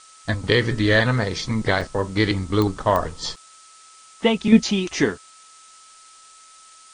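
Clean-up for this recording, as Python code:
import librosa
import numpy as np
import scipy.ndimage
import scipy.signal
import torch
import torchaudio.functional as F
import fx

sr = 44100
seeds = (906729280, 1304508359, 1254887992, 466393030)

y = fx.fix_declick_ar(x, sr, threshold=10.0)
y = fx.notch(y, sr, hz=1300.0, q=30.0)
y = fx.fix_interpolate(y, sr, at_s=(1.81, 3.36), length_ms=4.0)
y = fx.noise_reduce(y, sr, print_start_s=3.36, print_end_s=3.86, reduce_db=17.0)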